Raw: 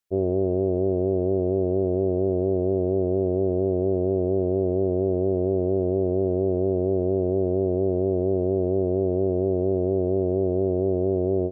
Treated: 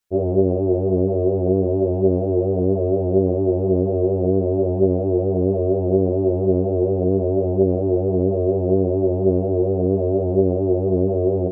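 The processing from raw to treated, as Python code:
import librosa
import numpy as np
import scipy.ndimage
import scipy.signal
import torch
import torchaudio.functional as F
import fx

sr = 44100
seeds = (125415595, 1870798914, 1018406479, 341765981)

y = fx.ensemble(x, sr)
y = y * 10.0 ** (8.0 / 20.0)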